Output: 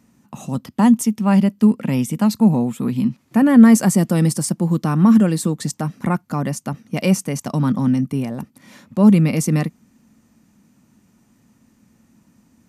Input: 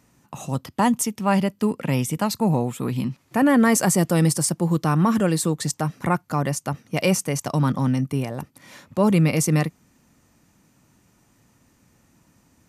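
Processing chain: bell 220 Hz +12 dB 0.59 oct; gain -1.5 dB

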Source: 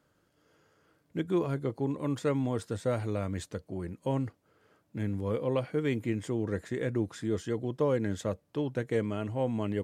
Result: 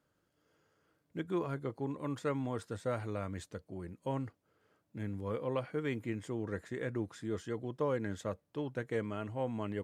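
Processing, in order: dynamic EQ 1300 Hz, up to +6 dB, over -45 dBFS, Q 0.85; gain -7 dB

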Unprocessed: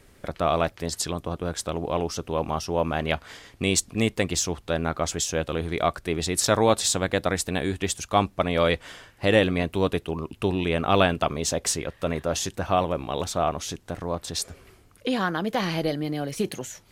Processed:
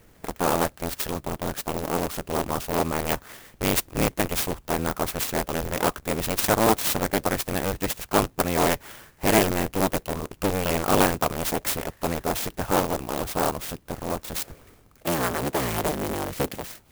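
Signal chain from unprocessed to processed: cycle switcher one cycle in 3, inverted; clock jitter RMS 0.061 ms

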